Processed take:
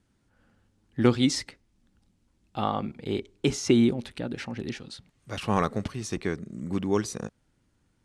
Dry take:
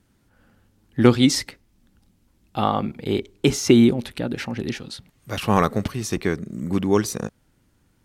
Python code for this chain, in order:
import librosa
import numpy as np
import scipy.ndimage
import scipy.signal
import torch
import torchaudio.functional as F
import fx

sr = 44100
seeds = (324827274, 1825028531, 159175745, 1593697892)

y = scipy.signal.sosfilt(scipy.signal.butter(4, 9900.0, 'lowpass', fs=sr, output='sos'), x)
y = F.gain(torch.from_numpy(y), -6.5).numpy()